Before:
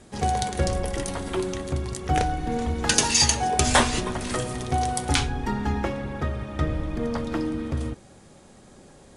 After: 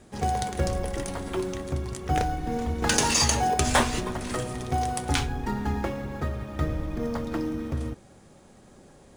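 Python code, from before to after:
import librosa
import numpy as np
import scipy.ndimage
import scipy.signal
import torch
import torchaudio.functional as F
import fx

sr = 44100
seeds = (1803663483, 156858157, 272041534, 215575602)

p1 = fx.sample_hold(x, sr, seeds[0], rate_hz=5800.0, jitter_pct=0)
p2 = x + F.gain(torch.from_numpy(p1), -10.0).numpy()
p3 = fx.env_flatten(p2, sr, amount_pct=50, at=(2.82, 3.54))
y = F.gain(torch.from_numpy(p3), -4.5).numpy()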